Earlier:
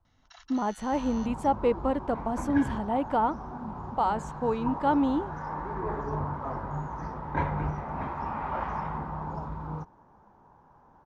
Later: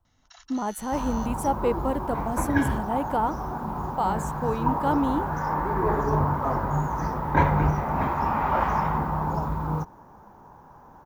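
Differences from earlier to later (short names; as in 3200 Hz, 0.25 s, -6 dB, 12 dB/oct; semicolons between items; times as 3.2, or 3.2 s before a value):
second sound +8.5 dB; master: remove LPF 4800 Hz 12 dB/oct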